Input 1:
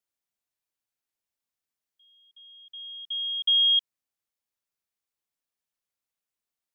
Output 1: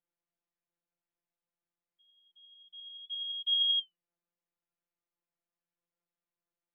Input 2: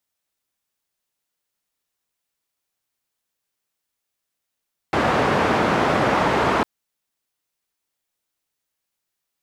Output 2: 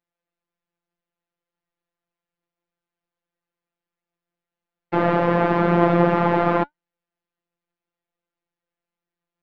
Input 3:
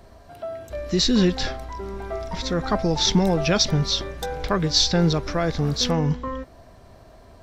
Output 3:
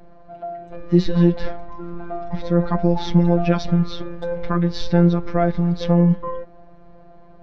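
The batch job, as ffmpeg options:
-filter_complex "[0:a]lowpass=2.3k,acrossover=split=730[a][b];[a]acontrast=59[c];[c][b]amix=inputs=2:normalize=0,afftfilt=real='hypot(re,im)*cos(PI*b)':imag='0':win_size=1024:overlap=0.75,flanger=delay=3.1:depth=3:regen=80:speed=0.59:shape=triangular,volume=5dB"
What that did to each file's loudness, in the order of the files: -7.0, +0.5, +2.5 LU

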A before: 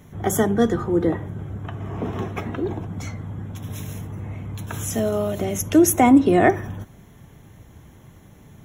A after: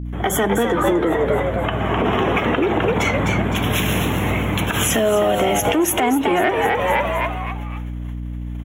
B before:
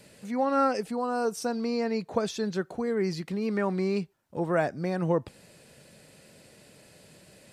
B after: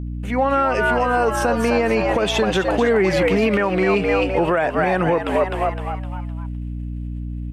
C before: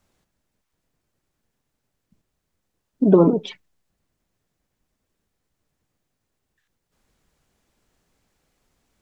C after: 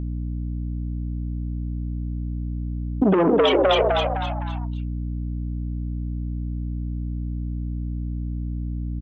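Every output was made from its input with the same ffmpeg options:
-filter_complex "[0:a]asoftclip=type=tanh:threshold=-11dB,highpass=f=460:p=1,agate=range=-41dB:threshold=-52dB:ratio=16:detection=peak,asplit=6[a][b][c][d][e][f];[b]adelay=256,afreqshift=98,volume=-7dB[g];[c]adelay=512,afreqshift=196,volume=-14.5dB[h];[d]adelay=768,afreqshift=294,volume=-22.1dB[i];[e]adelay=1024,afreqshift=392,volume=-29.6dB[j];[f]adelay=1280,afreqshift=490,volume=-37.1dB[k];[a][g][h][i][j][k]amix=inputs=6:normalize=0,dynaudnorm=f=200:g=21:m=9dB,highshelf=f=3.7k:t=q:w=3:g=-6.5,aeval=exprs='val(0)+0.0112*(sin(2*PI*60*n/s)+sin(2*PI*2*60*n/s)/2+sin(2*PI*3*60*n/s)/3+sin(2*PI*4*60*n/s)/4+sin(2*PI*5*60*n/s)/5)':c=same,acompressor=threshold=-25dB:ratio=16,alimiter=level_in=20.5dB:limit=-1dB:release=50:level=0:latency=1,volume=-7.5dB"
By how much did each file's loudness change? +2.5, +10.0, -8.0 LU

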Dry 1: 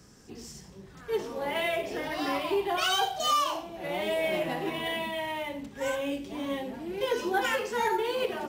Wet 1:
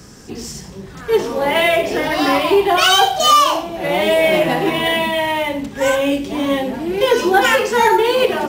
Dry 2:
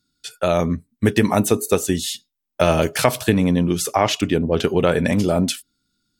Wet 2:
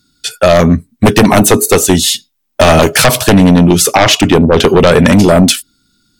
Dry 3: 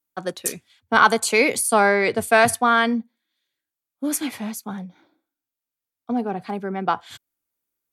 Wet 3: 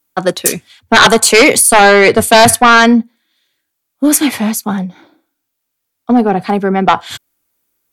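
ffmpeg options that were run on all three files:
-af "aeval=exprs='0.891*sin(PI/2*3.55*val(0)/0.891)':c=same"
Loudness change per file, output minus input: +14.5, +11.5, +11.0 LU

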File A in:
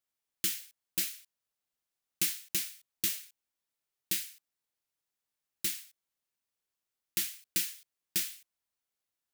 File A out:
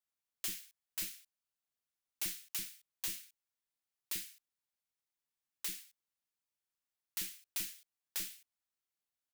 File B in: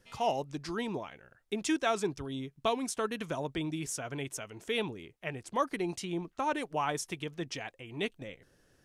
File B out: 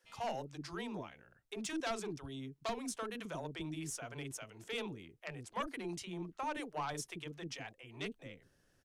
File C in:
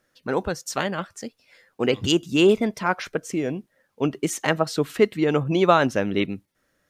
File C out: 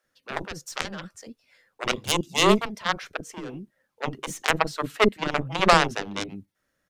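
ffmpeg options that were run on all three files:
-filter_complex "[0:a]aeval=exprs='0.708*(cos(1*acos(clip(val(0)/0.708,-1,1)))-cos(1*PI/2))+0.224*(cos(2*acos(clip(val(0)/0.708,-1,1)))-cos(2*PI/2))+0.0631*(cos(5*acos(clip(val(0)/0.708,-1,1)))-cos(5*PI/2))+0.2*(cos(7*acos(clip(val(0)/0.708,-1,1)))-cos(7*PI/2))':c=same,acrossover=split=420[a][b];[a]adelay=40[c];[c][b]amix=inputs=2:normalize=0"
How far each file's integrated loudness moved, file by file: -7.5, -8.0, -2.0 LU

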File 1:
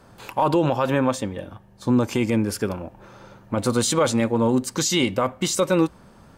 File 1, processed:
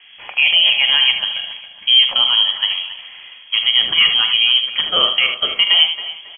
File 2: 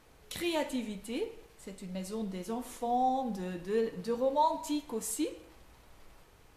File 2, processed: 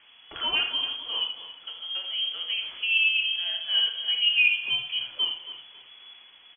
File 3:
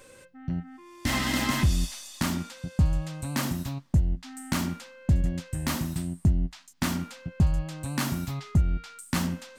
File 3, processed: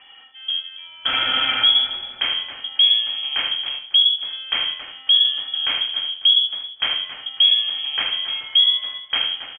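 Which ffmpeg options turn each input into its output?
-filter_complex "[0:a]asplit=2[a][b];[b]aecho=0:1:45|77:0.266|0.376[c];[a][c]amix=inputs=2:normalize=0,lowpass=f=2.9k:t=q:w=0.5098,lowpass=f=2.9k:t=q:w=0.6013,lowpass=f=2.9k:t=q:w=0.9,lowpass=f=2.9k:t=q:w=2.563,afreqshift=-3400,asplit=2[d][e];[e]adelay=274,lowpass=f=2.3k:p=1,volume=-11dB,asplit=2[f][g];[g]adelay=274,lowpass=f=2.3k:p=1,volume=0.42,asplit=2[h][i];[i]adelay=274,lowpass=f=2.3k:p=1,volume=0.42,asplit=2[j][k];[k]adelay=274,lowpass=f=2.3k:p=1,volume=0.42[l];[f][h][j][l]amix=inputs=4:normalize=0[m];[d][m]amix=inputs=2:normalize=0,volume=5.5dB"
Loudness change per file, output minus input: +9.5, +9.5, +11.5 LU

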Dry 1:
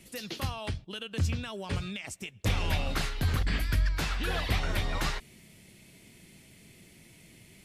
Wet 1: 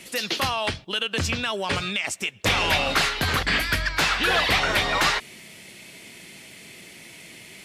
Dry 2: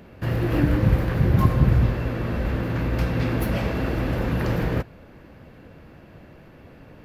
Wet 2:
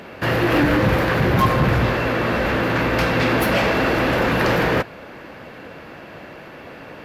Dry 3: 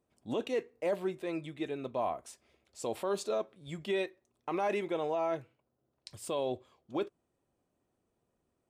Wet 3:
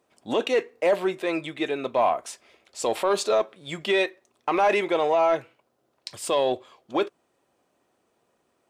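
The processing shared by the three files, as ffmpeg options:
-filter_complex "[0:a]asplit=2[a][b];[b]highpass=f=720:p=1,volume=24dB,asoftclip=type=tanh:threshold=-3.5dB[c];[a][c]amix=inputs=2:normalize=0,lowpass=f=5.4k:p=1,volume=-6dB,volume=-2.5dB"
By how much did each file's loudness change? +9.5, +4.5, +10.5 LU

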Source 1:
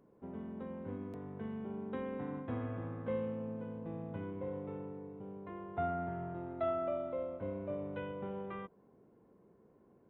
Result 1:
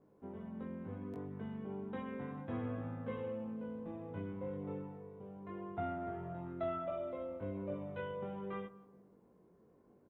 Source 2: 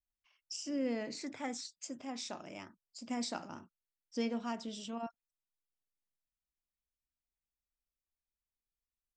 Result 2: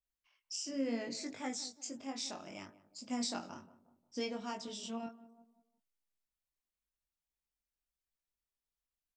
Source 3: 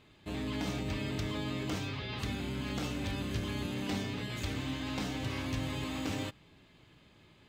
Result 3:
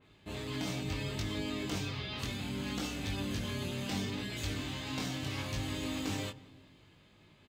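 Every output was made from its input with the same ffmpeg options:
-filter_complex "[0:a]asplit=2[a][b];[b]adelay=178,lowpass=f=950:p=1,volume=-15dB,asplit=2[c][d];[d]adelay=178,lowpass=f=950:p=1,volume=0.47,asplit=2[e][f];[f]adelay=178,lowpass=f=950:p=1,volume=0.47,asplit=2[g][h];[h]adelay=178,lowpass=f=950:p=1,volume=0.47[i];[c][e][g][i]amix=inputs=4:normalize=0[j];[a][j]amix=inputs=2:normalize=0,flanger=delay=19.5:depth=2.8:speed=0.68,adynamicequalizer=threshold=0.00141:dfrequency=3200:dqfactor=0.7:tfrequency=3200:tqfactor=0.7:attack=5:release=100:ratio=0.375:range=2.5:mode=boostabove:tftype=highshelf,volume=1.5dB"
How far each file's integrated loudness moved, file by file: -2.0, -0.5, -0.5 LU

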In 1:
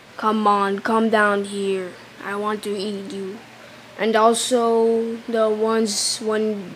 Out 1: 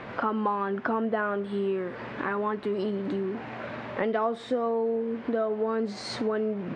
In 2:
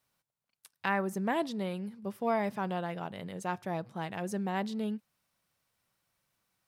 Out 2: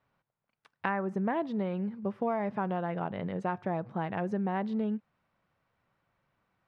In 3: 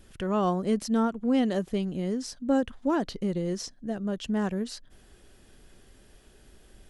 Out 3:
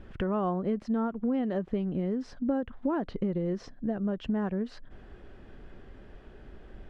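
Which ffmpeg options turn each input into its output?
-af "lowpass=1.8k,acompressor=threshold=-35dB:ratio=4,volume=7dB"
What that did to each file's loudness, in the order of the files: -9.0, +1.5, -2.5 LU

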